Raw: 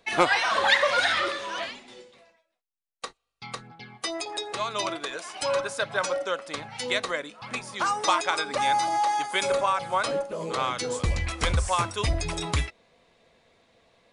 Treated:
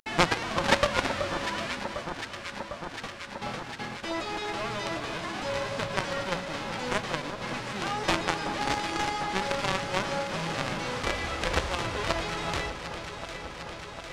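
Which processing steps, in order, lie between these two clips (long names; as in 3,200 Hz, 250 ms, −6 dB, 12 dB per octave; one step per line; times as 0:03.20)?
spectral envelope flattened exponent 0.1
mains-hum notches 60/120/180 Hz
in parallel at −1 dB: downward compressor 4 to 1, threshold −38 dBFS, peak gain reduction 19 dB
on the sum: log-companded quantiser 2 bits
head-to-tape spacing loss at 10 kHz 29 dB
delay that swaps between a low-pass and a high-pass 376 ms, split 1,400 Hz, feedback 87%, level −8.5 dB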